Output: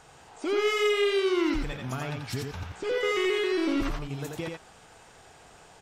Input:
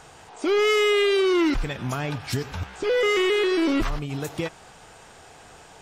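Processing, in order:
single-tap delay 86 ms −4 dB
level −6.5 dB

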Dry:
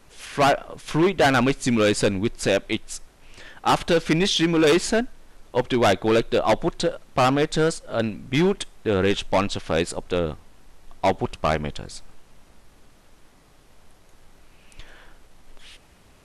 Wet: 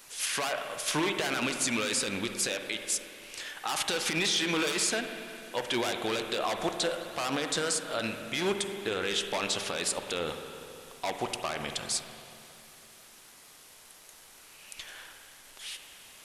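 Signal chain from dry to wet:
spectral tilt +4 dB per octave
brickwall limiter −18 dBFS, peak gain reduction 16 dB
convolution reverb RT60 2.9 s, pre-delay 45 ms, DRR 5.5 dB
level −1 dB

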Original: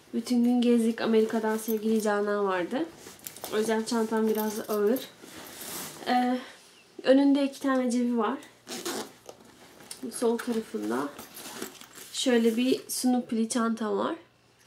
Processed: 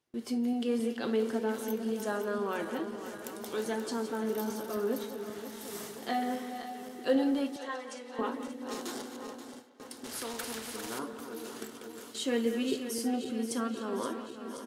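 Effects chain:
feedback delay that plays each chunk backwards 265 ms, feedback 80%, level −10 dB
noise gate with hold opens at −29 dBFS
0:07.56–0:08.19: band-pass filter 690–7,800 Hz
far-end echo of a speakerphone 180 ms, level −12 dB
0:10.04–0:10.99: every bin compressed towards the loudest bin 2 to 1
level −7 dB

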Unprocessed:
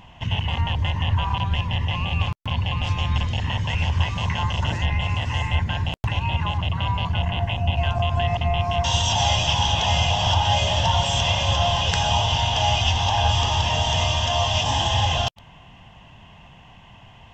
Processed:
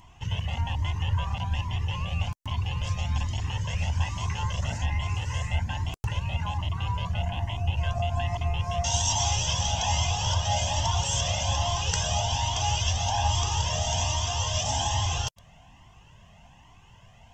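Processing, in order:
high shelf with overshoot 4,700 Hz +8 dB, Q 1.5
flanger whose copies keep moving one way rising 1.2 Hz
level −2.5 dB

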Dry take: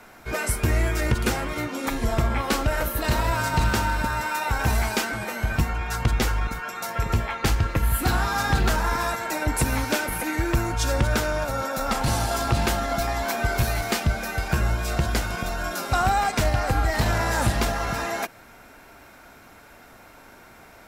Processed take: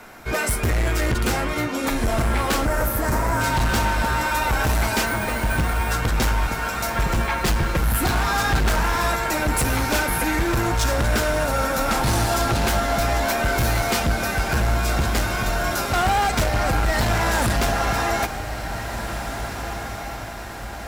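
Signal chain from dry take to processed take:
0:06.96–0:07.78: comb filter 5.6 ms, depth 56%
hard clipping −22.5 dBFS, distortion −9 dB
0:02.65–0:03.41: Butterworth band-reject 3,300 Hz, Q 0.83
0:05.06–0:05.92: bad sample-rate conversion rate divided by 4×, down filtered, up hold
on a send: feedback delay with all-pass diffusion 1,831 ms, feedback 51%, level −9 dB
on the sum: level +5 dB

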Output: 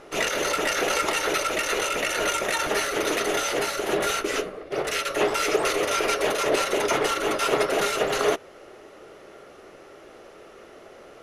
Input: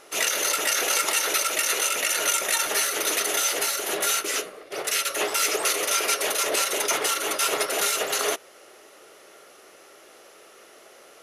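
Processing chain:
RIAA equalisation playback
level +3 dB

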